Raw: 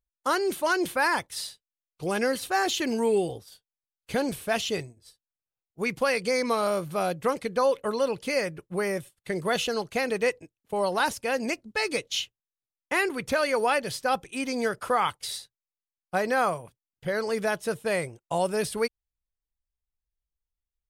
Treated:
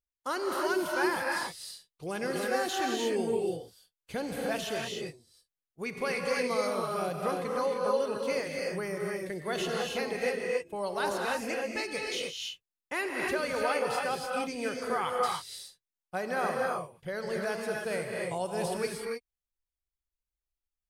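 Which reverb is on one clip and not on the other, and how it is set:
reverb whose tail is shaped and stops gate 330 ms rising, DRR −1 dB
level −8 dB

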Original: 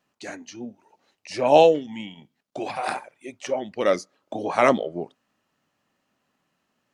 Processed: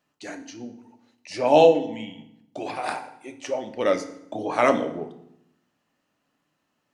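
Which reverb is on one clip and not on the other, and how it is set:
feedback delay network reverb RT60 0.77 s, low-frequency decay 1.4×, high-frequency decay 0.8×, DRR 6.5 dB
level −2 dB

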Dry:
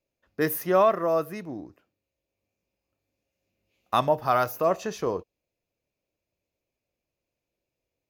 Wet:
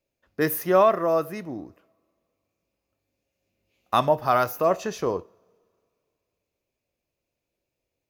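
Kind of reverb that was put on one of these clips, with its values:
coupled-rooms reverb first 0.48 s, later 2.5 s, from −21 dB, DRR 19 dB
level +2 dB

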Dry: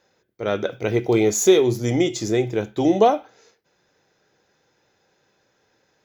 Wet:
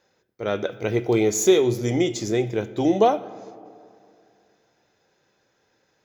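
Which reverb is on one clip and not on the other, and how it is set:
comb and all-pass reverb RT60 2.5 s, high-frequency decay 0.45×, pre-delay 45 ms, DRR 17.5 dB
level −2 dB

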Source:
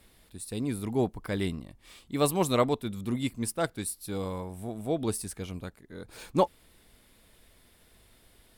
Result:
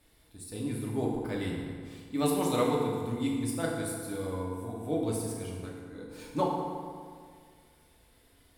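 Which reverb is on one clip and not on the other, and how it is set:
feedback delay network reverb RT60 2 s, low-frequency decay 1.05×, high-frequency decay 0.6×, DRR −3.5 dB
level −7.5 dB

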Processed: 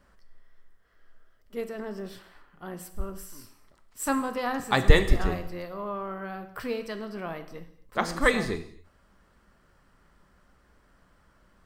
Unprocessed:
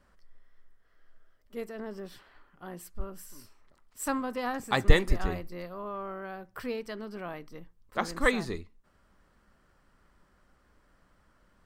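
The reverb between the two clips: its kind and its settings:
reverb whose tail is shaped and stops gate 290 ms falling, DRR 9 dB
level +3 dB

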